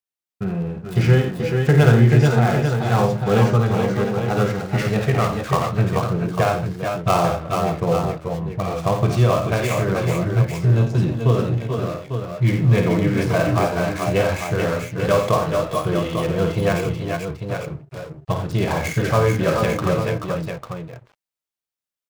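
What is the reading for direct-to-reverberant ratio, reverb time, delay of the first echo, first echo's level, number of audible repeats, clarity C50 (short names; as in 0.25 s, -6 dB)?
none, none, 52 ms, -7.5 dB, 4, none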